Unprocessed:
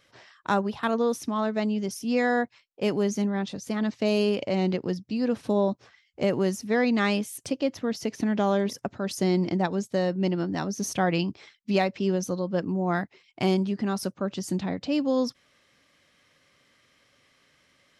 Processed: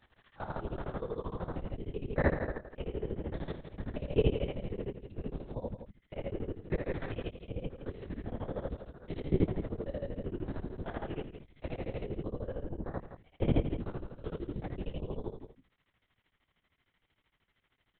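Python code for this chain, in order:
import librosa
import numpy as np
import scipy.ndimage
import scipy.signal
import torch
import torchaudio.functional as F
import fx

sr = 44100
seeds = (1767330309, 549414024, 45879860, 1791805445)

p1 = fx.spec_steps(x, sr, hold_ms=200)
p2 = fx.hum_notches(p1, sr, base_hz=50, count=6)
p3 = fx.level_steps(p2, sr, step_db=12)
p4 = fx.granulator(p3, sr, seeds[0], grain_ms=78.0, per_s=13.0, spray_ms=19.0, spread_st=0)
p5 = fx.dynamic_eq(p4, sr, hz=370.0, q=0.97, threshold_db=-46.0, ratio=4.0, max_db=4)
p6 = fx.lpc_vocoder(p5, sr, seeds[1], excitation='whisper', order=8)
y = p6 + fx.echo_single(p6, sr, ms=168, db=-10.0, dry=0)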